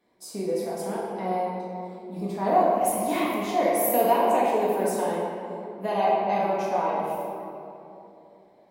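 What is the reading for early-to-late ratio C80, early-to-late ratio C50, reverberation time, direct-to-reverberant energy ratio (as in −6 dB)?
0.0 dB, −1.5 dB, 2.9 s, −7.0 dB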